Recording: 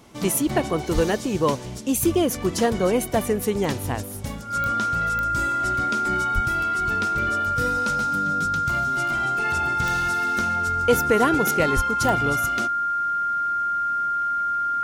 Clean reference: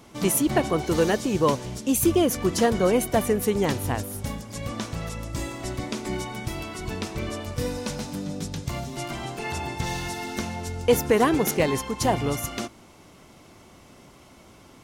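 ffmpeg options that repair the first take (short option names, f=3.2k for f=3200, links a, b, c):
-filter_complex "[0:a]adeclick=t=4,bandreject=f=1.4k:w=30,asplit=3[a][b][c];[a]afade=t=out:st=0.94:d=0.02[d];[b]highpass=f=140:w=0.5412,highpass=f=140:w=1.3066,afade=t=in:st=0.94:d=0.02,afade=t=out:st=1.06:d=0.02[e];[c]afade=t=in:st=1.06:d=0.02[f];[d][e][f]amix=inputs=3:normalize=0,asplit=3[g][h][i];[g]afade=t=out:st=6.34:d=0.02[j];[h]highpass=f=140:w=0.5412,highpass=f=140:w=1.3066,afade=t=in:st=6.34:d=0.02,afade=t=out:st=6.46:d=0.02[k];[i]afade=t=in:st=6.46:d=0.02[l];[j][k][l]amix=inputs=3:normalize=0,asplit=3[m][n][o];[m]afade=t=out:st=11.75:d=0.02[p];[n]highpass=f=140:w=0.5412,highpass=f=140:w=1.3066,afade=t=in:st=11.75:d=0.02,afade=t=out:st=11.87:d=0.02[q];[o]afade=t=in:st=11.87:d=0.02[r];[p][q][r]amix=inputs=3:normalize=0"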